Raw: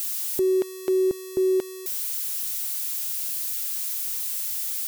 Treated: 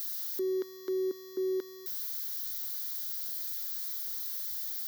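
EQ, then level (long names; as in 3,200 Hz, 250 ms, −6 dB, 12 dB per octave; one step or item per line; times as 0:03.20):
high-pass filter 270 Hz 24 dB per octave
phaser with its sweep stopped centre 2,600 Hz, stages 6
−6.0 dB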